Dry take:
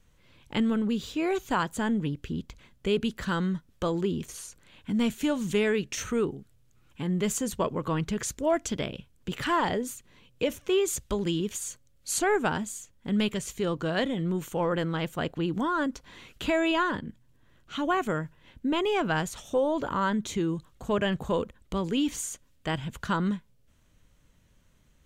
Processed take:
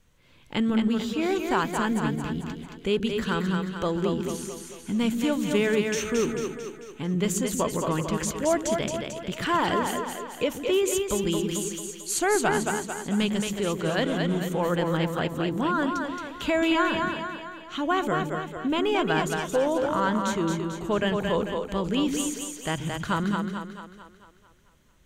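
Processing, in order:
low-shelf EQ 150 Hz −3 dB
echo with a time of its own for lows and highs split 330 Hz, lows 133 ms, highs 222 ms, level −4 dB
level +1.5 dB

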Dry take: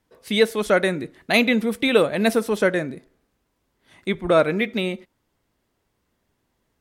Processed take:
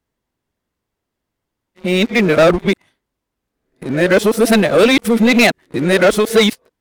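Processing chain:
played backwards from end to start
leveller curve on the samples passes 3

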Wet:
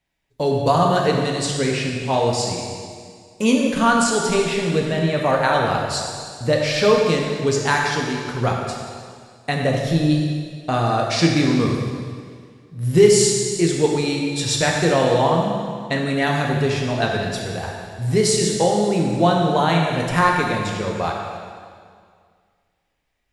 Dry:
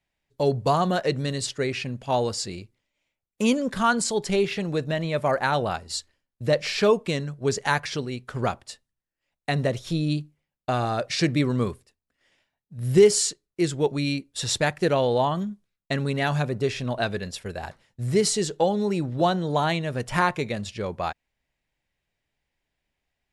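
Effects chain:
dense smooth reverb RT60 2 s, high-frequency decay 0.95×, DRR −1 dB
level +2.5 dB

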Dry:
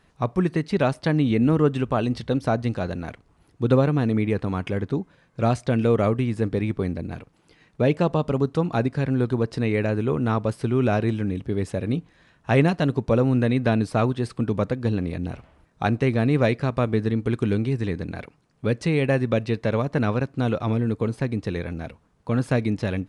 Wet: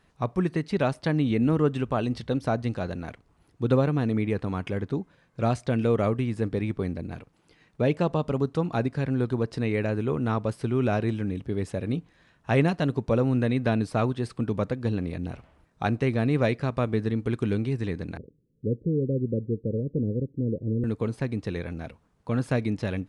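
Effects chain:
0:18.17–0:20.84: Butterworth low-pass 510 Hz 72 dB per octave
level −3.5 dB

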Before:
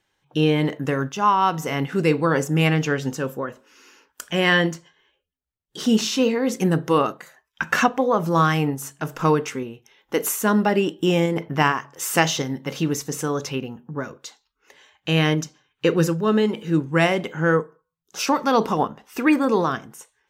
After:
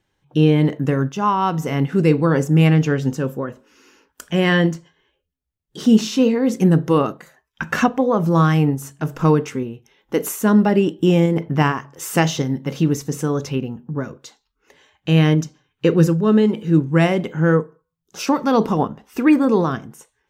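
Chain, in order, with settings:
low-shelf EQ 410 Hz +11 dB
level −2.5 dB

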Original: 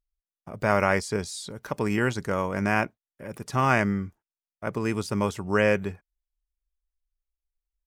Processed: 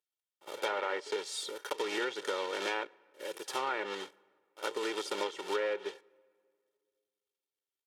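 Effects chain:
one scale factor per block 3 bits
high-pass filter 320 Hz 24 dB per octave
treble cut that deepens with the level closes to 2,200 Hz, closed at −18.5 dBFS
parametric band 3,300 Hz +8 dB 0.38 octaves
comb filter 2.2 ms, depth 67%
downward compressor 4 to 1, threshold −28 dBFS, peak gain reduction 10 dB
backwards echo 59 ms −16.5 dB
on a send at −23.5 dB: convolution reverb RT60 2.2 s, pre-delay 7 ms
on the sum: level −3.5 dB

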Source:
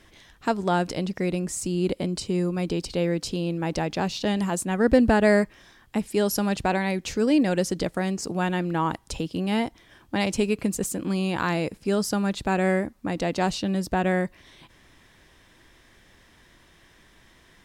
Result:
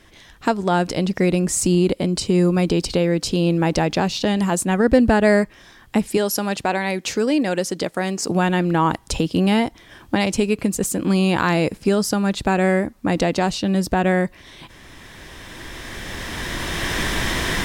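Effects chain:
camcorder AGC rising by 10 dB per second
0:06.17–0:08.29: high-pass filter 300 Hz 6 dB per octave
level +3.5 dB

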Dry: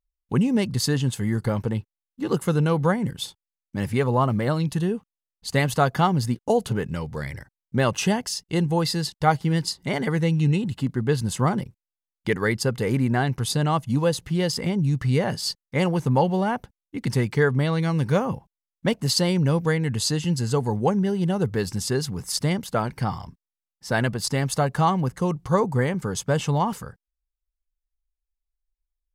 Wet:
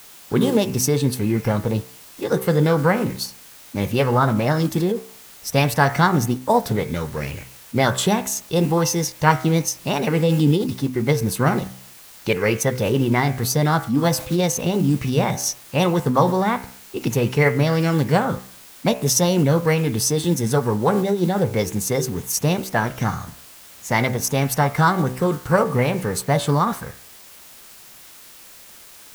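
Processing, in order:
hum removal 63.8 Hz, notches 36
bit-depth reduction 8 bits, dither triangular
formants moved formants +4 semitones
level +4 dB

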